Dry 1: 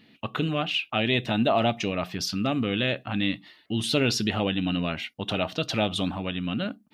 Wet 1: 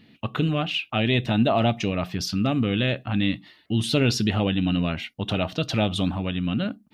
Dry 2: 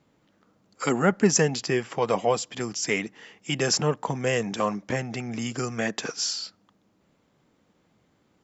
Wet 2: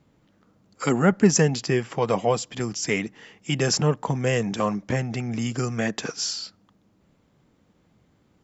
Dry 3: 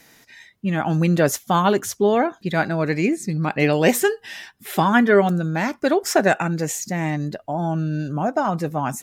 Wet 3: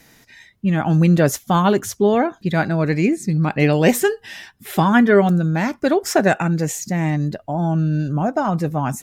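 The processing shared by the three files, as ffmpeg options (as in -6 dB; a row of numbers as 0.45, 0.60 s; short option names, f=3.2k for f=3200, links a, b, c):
-af "lowshelf=f=170:g=10"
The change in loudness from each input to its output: +2.5, +2.0, +2.5 LU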